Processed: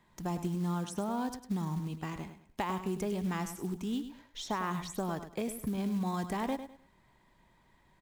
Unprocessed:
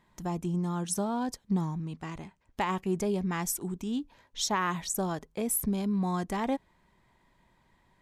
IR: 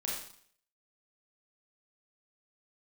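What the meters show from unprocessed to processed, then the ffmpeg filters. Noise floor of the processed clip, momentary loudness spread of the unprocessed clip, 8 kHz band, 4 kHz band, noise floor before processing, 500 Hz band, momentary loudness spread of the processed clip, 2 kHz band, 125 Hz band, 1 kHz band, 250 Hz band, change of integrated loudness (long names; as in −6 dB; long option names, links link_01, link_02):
−67 dBFS, 8 LU, −12.0 dB, −6.0 dB, −68 dBFS, −3.5 dB, 6 LU, −5.0 dB, −2.5 dB, −3.5 dB, −3.0 dB, −4.5 dB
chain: -filter_complex "[0:a]acrossover=split=95|1300|2800[link_01][link_02][link_03][link_04];[link_01]acompressor=threshold=-52dB:ratio=4[link_05];[link_02]acompressor=threshold=-32dB:ratio=4[link_06];[link_03]acompressor=threshold=-46dB:ratio=4[link_07];[link_04]acompressor=threshold=-48dB:ratio=4[link_08];[link_05][link_06][link_07][link_08]amix=inputs=4:normalize=0,aecho=1:1:102|204|306:0.299|0.0776|0.0202,acrusher=bits=6:mode=log:mix=0:aa=0.000001"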